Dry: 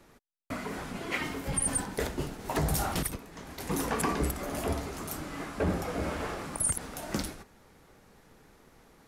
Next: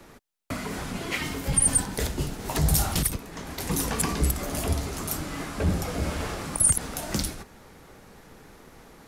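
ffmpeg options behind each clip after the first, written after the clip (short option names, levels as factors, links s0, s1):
-filter_complex "[0:a]acrossover=split=170|3000[s0][s1][s2];[s1]acompressor=threshold=0.00501:ratio=2[s3];[s0][s3][s2]amix=inputs=3:normalize=0,volume=2.66"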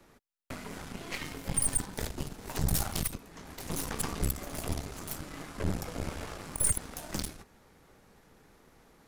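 -af "aeval=exprs='0.335*(cos(1*acos(clip(val(0)/0.335,-1,1)))-cos(1*PI/2))+0.0473*(cos(3*acos(clip(val(0)/0.335,-1,1)))-cos(3*PI/2))+0.0473*(cos(6*acos(clip(val(0)/0.335,-1,1)))-cos(6*PI/2))':c=same,volume=0.531"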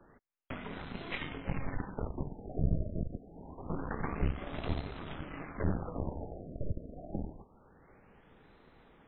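-af "afftfilt=real='re*lt(b*sr/1024,680*pow(4200/680,0.5+0.5*sin(2*PI*0.26*pts/sr)))':imag='im*lt(b*sr/1024,680*pow(4200/680,0.5+0.5*sin(2*PI*0.26*pts/sr)))':win_size=1024:overlap=0.75"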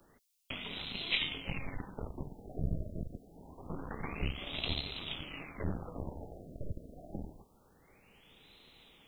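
-af "aexciter=amount=12:drive=3.2:freq=2500,volume=0.596"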